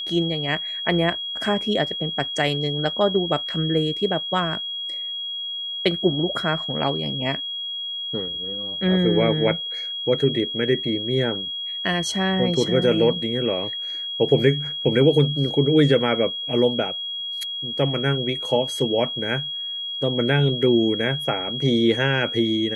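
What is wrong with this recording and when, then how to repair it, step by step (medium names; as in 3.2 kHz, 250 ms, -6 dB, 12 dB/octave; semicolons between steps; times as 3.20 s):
whine 3.3 kHz -27 dBFS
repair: band-stop 3.3 kHz, Q 30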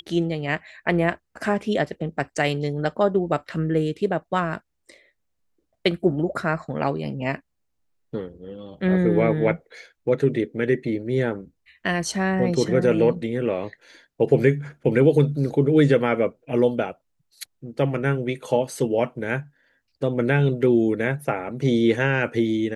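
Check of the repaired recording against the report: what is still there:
nothing left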